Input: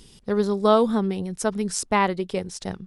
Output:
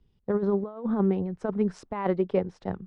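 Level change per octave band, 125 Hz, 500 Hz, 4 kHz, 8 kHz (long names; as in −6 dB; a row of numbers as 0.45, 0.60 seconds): −0.5 dB, −4.5 dB, below −20 dB, below −25 dB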